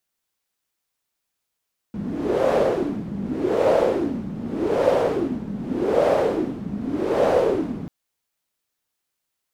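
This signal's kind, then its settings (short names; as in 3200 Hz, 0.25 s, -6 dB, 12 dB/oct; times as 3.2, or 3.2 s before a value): wind-like swept noise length 5.94 s, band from 200 Hz, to 560 Hz, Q 4.6, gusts 5, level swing 12 dB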